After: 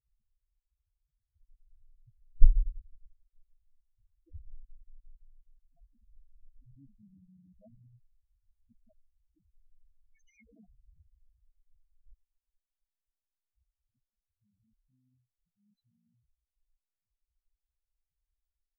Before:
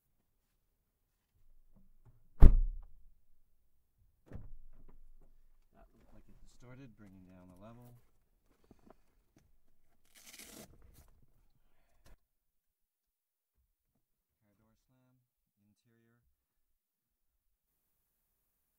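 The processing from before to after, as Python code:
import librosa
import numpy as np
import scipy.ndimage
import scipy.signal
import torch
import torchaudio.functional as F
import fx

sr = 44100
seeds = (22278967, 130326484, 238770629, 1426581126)

y = fx.cycle_switch(x, sr, every=3, mode='muted')
y = fx.spec_topn(y, sr, count=2)
y = y * librosa.db_to_amplitude(6.5)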